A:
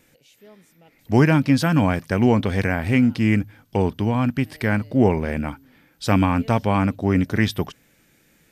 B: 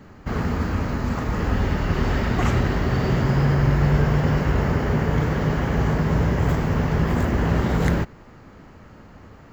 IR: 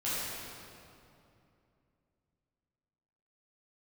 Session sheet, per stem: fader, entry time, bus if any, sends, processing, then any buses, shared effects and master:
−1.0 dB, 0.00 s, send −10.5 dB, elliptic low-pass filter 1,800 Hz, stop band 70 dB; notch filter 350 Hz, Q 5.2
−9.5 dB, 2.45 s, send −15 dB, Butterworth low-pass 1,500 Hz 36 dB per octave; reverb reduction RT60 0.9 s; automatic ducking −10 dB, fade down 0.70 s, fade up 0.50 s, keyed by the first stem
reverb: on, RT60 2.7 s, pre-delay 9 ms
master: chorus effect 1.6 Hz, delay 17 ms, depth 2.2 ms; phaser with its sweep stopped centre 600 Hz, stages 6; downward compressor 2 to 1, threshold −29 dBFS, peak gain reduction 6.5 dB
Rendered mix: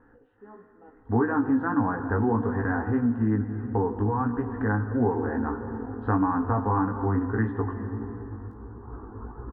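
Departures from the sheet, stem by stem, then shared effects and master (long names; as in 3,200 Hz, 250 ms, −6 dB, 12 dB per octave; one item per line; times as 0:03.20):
stem A −1.0 dB → +11.0 dB
reverb return −6.0 dB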